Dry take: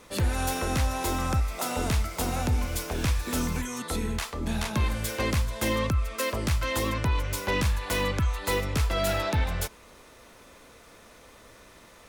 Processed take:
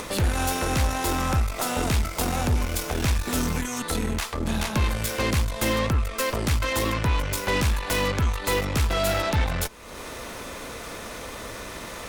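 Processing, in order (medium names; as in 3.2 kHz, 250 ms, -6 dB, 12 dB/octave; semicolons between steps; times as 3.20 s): Chebyshev shaper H 6 -17 dB, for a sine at -17.5 dBFS; upward compressor, threshold -26 dBFS; trim +2.5 dB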